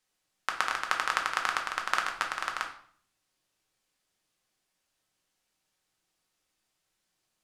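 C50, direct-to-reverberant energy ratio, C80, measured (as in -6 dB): 8.0 dB, 1.5 dB, 12.5 dB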